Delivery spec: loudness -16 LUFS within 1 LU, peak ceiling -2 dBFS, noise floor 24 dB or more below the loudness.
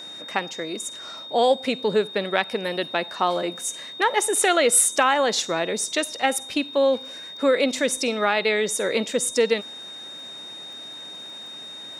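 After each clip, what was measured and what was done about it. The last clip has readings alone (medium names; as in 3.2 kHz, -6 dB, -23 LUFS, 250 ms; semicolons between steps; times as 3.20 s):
tick rate 47 per s; steady tone 3.7 kHz; tone level -36 dBFS; loudness -22.5 LUFS; peak level -4.5 dBFS; loudness target -16.0 LUFS
-> de-click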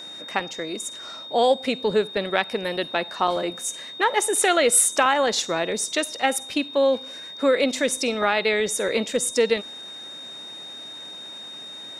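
tick rate 0.33 per s; steady tone 3.7 kHz; tone level -36 dBFS
-> band-stop 3.7 kHz, Q 30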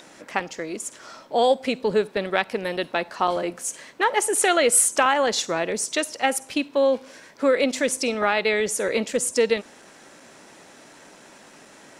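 steady tone not found; loudness -23.0 LUFS; peak level -4.5 dBFS; loudness target -16.0 LUFS
-> trim +7 dB; peak limiter -2 dBFS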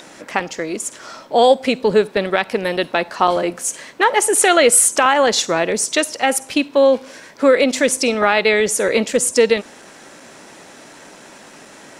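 loudness -16.0 LUFS; peak level -2.0 dBFS; noise floor -42 dBFS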